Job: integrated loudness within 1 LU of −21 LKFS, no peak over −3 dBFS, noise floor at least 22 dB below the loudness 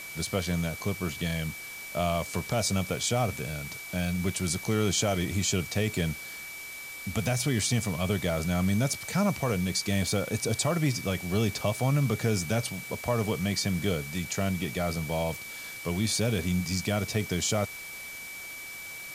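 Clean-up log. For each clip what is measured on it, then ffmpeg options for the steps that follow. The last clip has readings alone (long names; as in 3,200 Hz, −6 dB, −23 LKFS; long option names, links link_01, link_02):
interfering tone 2,300 Hz; level of the tone −40 dBFS; background noise floor −41 dBFS; target noise floor −52 dBFS; integrated loudness −29.5 LKFS; sample peak −14.5 dBFS; target loudness −21.0 LKFS
→ -af "bandreject=frequency=2300:width=30"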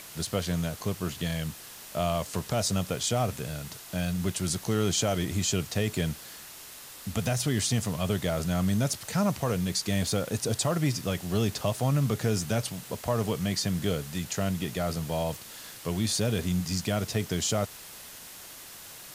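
interfering tone none found; background noise floor −46 dBFS; target noise floor −51 dBFS
→ -af "afftdn=noise_reduction=6:noise_floor=-46"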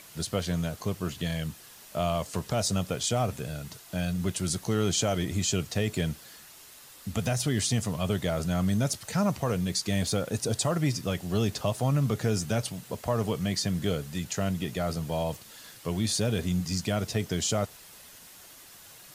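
background noise floor −50 dBFS; target noise floor −52 dBFS
→ -af "afftdn=noise_reduction=6:noise_floor=-50"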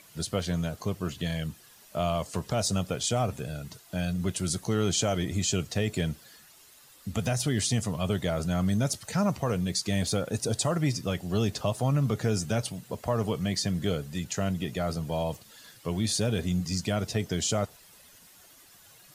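background noise floor −55 dBFS; integrated loudness −29.5 LKFS; sample peak −15.0 dBFS; target loudness −21.0 LKFS
→ -af "volume=8.5dB"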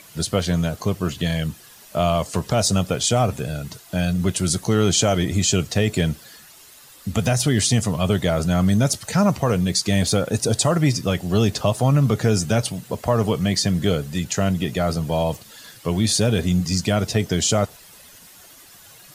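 integrated loudness −21.0 LKFS; sample peak −6.5 dBFS; background noise floor −47 dBFS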